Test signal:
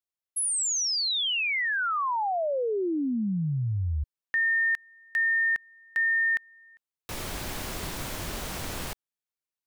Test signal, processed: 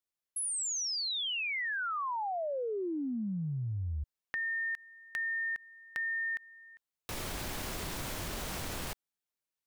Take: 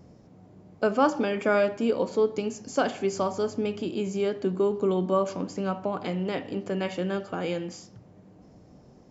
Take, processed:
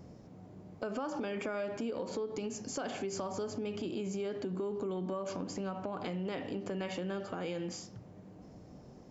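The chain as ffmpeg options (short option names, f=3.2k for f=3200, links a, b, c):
-af "acompressor=threshold=-33dB:ratio=8:attack=2.8:release=112:knee=6:detection=peak"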